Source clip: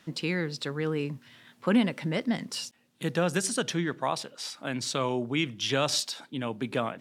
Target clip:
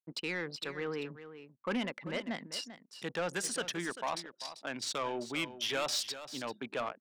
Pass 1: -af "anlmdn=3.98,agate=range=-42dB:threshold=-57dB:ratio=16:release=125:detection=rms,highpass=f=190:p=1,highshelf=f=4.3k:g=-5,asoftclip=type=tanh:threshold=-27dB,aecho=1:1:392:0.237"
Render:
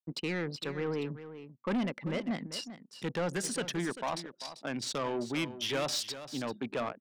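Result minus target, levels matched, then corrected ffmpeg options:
250 Hz band +3.5 dB
-af "anlmdn=3.98,agate=range=-42dB:threshold=-57dB:ratio=16:release=125:detection=rms,highpass=f=730:p=1,highshelf=f=4.3k:g=-5,asoftclip=type=tanh:threshold=-27dB,aecho=1:1:392:0.237"

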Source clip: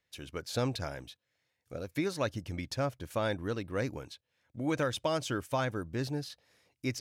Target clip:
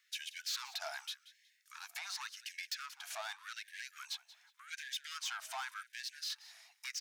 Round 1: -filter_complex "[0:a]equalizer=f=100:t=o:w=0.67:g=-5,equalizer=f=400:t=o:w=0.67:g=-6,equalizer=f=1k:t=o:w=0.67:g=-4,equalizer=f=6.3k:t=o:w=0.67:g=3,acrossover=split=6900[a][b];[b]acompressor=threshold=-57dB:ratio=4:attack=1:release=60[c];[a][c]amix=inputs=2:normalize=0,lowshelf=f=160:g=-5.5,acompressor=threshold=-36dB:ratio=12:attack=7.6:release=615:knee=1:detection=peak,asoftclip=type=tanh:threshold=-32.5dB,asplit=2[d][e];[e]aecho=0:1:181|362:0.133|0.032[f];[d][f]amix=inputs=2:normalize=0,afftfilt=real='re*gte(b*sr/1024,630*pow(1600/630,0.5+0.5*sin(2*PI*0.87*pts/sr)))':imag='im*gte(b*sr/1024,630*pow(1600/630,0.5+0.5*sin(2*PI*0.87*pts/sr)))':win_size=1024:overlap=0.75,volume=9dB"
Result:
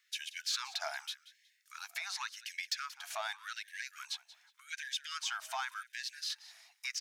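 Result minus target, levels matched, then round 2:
soft clip: distortion -11 dB
-filter_complex "[0:a]equalizer=f=100:t=o:w=0.67:g=-5,equalizer=f=400:t=o:w=0.67:g=-6,equalizer=f=1k:t=o:w=0.67:g=-4,equalizer=f=6.3k:t=o:w=0.67:g=3,acrossover=split=6900[a][b];[b]acompressor=threshold=-57dB:ratio=4:attack=1:release=60[c];[a][c]amix=inputs=2:normalize=0,lowshelf=f=160:g=-5.5,acompressor=threshold=-36dB:ratio=12:attack=7.6:release=615:knee=1:detection=peak,asoftclip=type=tanh:threshold=-42.5dB,asplit=2[d][e];[e]aecho=0:1:181|362:0.133|0.032[f];[d][f]amix=inputs=2:normalize=0,afftfilt=real='re*gte(b*sr/1024,630*pow(1600/630,0.5+0.5*sin(2*PI*0.87*pts/sr)))':imag='im*gte(b*sr/1024,630*pow(1600/630,0.5+0.5*sin(2*PI*0.87*pts/sr)))':win_size=1024:overlap=0.75,volume=9dB"

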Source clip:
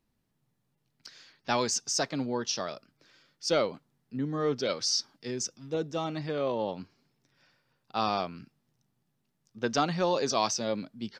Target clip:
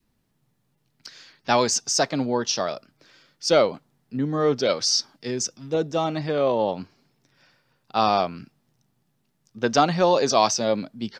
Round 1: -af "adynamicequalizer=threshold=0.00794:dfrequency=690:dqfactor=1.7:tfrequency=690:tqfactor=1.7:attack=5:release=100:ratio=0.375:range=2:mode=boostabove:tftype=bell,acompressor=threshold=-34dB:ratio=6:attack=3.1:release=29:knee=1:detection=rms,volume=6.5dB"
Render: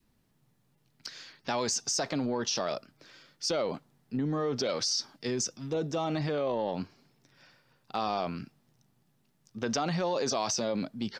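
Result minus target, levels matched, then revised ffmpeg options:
compressor: peak gain reduction +15 dB
-af "adynamicequalizer=threshold=0.00794:dfrequency=690:dqfactor=1.7:tfrequency=690:tqfactor=1.7:attack=5:release=100:ratio=0.375:range=2:mode=boostabove:tftype=bell,volume=6.5dB"

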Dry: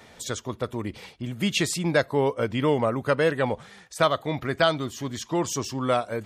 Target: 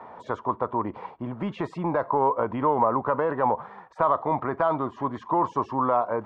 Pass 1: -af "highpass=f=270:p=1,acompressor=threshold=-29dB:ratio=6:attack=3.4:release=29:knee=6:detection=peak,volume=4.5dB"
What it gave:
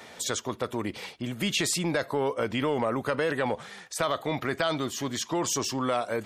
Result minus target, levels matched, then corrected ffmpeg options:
1000 Hz band -6.5 dB
-af "highpass=f=270:p=1,acompressor=threshold=-29dB:ratio=6:attack=3.4:release=29:knee=6:detection=peak,lowpass=f=1k:t=q:w=4.8,volume=4.5dB"

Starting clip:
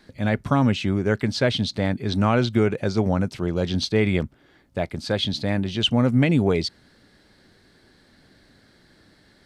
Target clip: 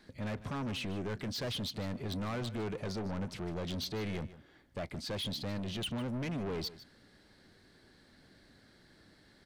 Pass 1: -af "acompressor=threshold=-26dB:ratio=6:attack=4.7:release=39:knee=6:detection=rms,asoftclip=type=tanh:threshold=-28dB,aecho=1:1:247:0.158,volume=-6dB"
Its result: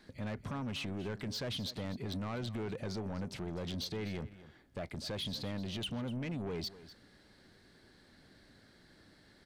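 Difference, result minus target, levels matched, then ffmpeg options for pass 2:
echo 95 ms late; compressor: peak gain reduction +6 dB
-af "acompressor=threshold=-18.5dB:ratio=6:attack=4.7:release=39:knee=6:detection=rms,asoftclip=type=tanh:threshold=-28dB,aecho=1:1:152:0.158,volume=-6dB"

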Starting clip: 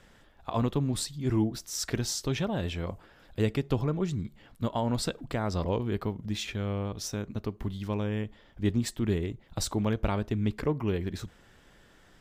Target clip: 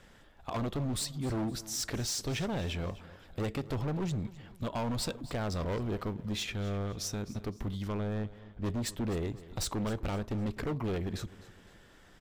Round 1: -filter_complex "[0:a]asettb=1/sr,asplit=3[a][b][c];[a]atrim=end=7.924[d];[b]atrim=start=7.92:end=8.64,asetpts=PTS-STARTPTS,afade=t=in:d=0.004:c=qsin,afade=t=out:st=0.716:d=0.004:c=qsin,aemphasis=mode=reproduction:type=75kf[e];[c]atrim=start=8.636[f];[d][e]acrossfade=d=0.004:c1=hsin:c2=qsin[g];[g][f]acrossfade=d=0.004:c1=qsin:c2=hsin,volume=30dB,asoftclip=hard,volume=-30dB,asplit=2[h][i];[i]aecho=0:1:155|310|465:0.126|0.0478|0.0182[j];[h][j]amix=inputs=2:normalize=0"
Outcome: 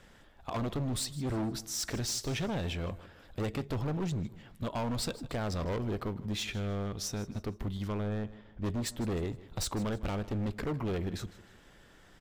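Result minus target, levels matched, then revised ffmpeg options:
echo 0.102 s early
-filter_complex "[0:a]asettb=1/sr,asplit=3[a][b][c];[a]atrim=end=7.924[d];[b]atrim=start=7.92:end=8.64,asetpts=PTS-STARTPTS,afade=t=in:d=0.004:c=qsin,afade=t=out:st=0.716:d=0.004:c=qsin,aemphasis=mode=reproduction:type=75kf[e];[c]atrim=start=8.636[f];[d][e]acrossfade=d=0.004:c1=hsin:c2=qsin[g];[g][f]acrossfade=d=0.004:c1=qsin:c2=hsin,volume=30dB,asoftclip=hard,volume=-30dB,asplit=2[h][i];[i]aecho=0:1:257|514|771:0.126|0.0478|0.0182[j];[h][j]amix=inputs=2:normalize=0"

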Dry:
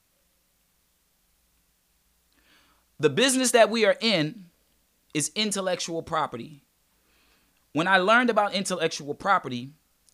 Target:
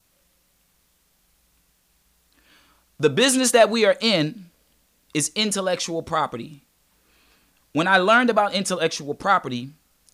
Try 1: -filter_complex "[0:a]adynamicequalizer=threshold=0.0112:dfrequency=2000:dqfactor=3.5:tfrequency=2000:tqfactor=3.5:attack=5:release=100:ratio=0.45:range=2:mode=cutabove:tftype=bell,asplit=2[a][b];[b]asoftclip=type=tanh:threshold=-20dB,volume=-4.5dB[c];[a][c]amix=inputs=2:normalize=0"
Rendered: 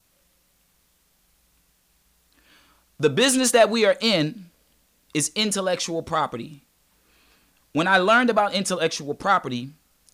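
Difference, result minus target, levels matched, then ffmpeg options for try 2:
soft clip: distortion +8 dB
-filter_complex "[0:a]adynamicequalizer=threshold=0.0112:dfrequency=2000:dqfactor=3.5:tfrequency=2000:tqfactor=3.5:attack=5:release=100:ratio=0.45:range=2:mode=cutabove:tftype=bell,asplit=2[a][b];[b]asoftclip=type=tanh:threshold=-12.5dB,volume=-4.5dB[c];[a][c]amix=inputs=2:normalize=0"

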